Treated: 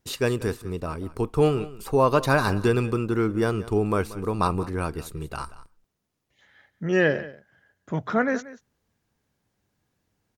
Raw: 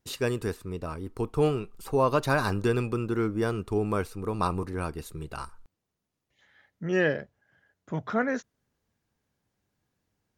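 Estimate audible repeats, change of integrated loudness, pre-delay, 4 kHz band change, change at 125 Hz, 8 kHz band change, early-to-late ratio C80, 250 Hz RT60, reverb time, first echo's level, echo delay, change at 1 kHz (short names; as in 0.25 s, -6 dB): 1, +4.0 dB, none, +4.0 dB, +4.0 dB, +4.0 dB, none, none, none, -17.5 dB, 0.184 s, +4.0 dB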